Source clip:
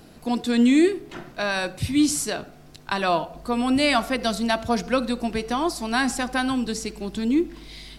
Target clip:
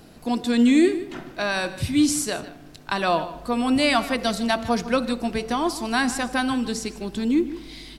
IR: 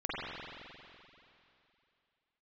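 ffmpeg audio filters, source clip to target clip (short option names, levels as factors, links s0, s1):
-filter_complex "[0:a]asplit=2[s0][s1];[s1]adelay=151.6,volume=0.178,highshelf=f=4000:g=-3.41[s2];[s0][s2]amix=inputs=2:normalize=0,asplit=2[s3][s4];[1:a]atrim=start_sample=2205[s5];[s4][s5]afir=irnorm=-1:irlink=0,volume=0.0376[s6];[s3][s6]amix=inputs=2:normalize=0"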